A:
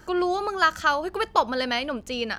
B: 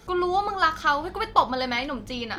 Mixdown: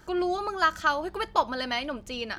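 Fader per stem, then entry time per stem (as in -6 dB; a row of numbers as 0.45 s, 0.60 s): -4.5 dB, -12.0 dB; 0.00 s, 0.00 s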